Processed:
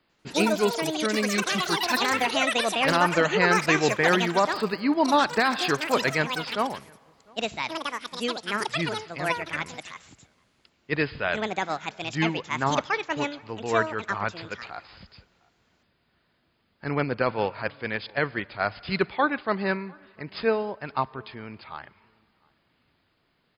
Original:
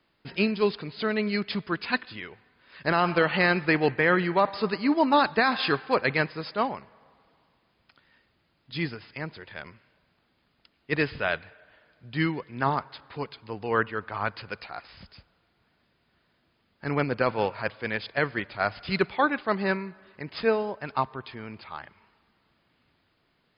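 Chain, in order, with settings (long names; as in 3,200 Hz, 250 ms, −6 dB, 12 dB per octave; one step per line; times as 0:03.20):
slap from a distant wall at 120 metres, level −28 dB
delay with pitch and tempo change per echo 95 ms, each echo +7 semitones, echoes 3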